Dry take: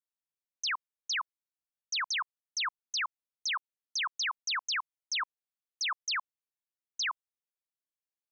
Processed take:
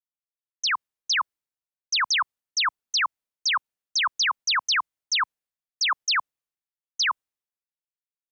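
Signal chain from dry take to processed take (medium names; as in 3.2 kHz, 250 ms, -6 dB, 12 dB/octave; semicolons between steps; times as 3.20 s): level rider; three bands expanded up and down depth 70%; trim -3 dB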